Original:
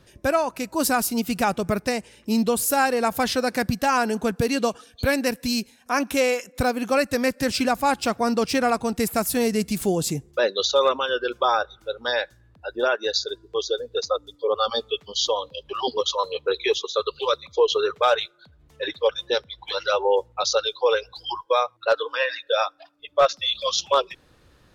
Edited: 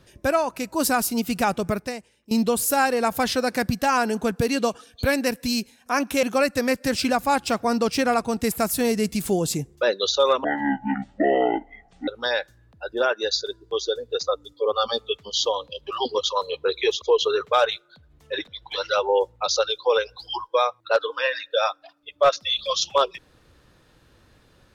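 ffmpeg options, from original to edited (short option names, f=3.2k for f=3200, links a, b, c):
-filter_complex "[0:a]asplit=7[a][b][c][d][e][f][g];[a]atrim=end=2.31,asetpts=PTS-STARTPTS,afade=t=out:st=1.67:d=0.64:c=qua:silence=0.149624[h];[b]atrim=start=2.31:end=6.232,asetpts=PTS-STARTPTS,afade=t=in:d=0.004:c=hsin:silence=0.149624[i];[c]atrim=start=6.788:end=11.004[j];[d]atrim=start=11:end=11.9,asetpts=PTS-STARTPTS,asetrate=24255,aresample=44100[k];[e]atrim=start=11.896:end=16.842[l];[f]atrim=start=17.508:end=18.962[m];[g]atrim=start=19.428[n];[h][i]concat=n=2:v=0:a=1[o];[o][j]acrossfade=d=0.004:c1=hsin:c2=hsin[p];[p][k]acrossfade=d=0.004:c1=hsin:c2=hsin[q];[q][l]acrossfade=d=0.004:c1=hsin:c2=hsin[r];[r][m]acrossfade=d=0.004:c1=hsin:c2=hsin[s];[s][n]acrossfade=d=0.004:c1=hsin:c2=hsin"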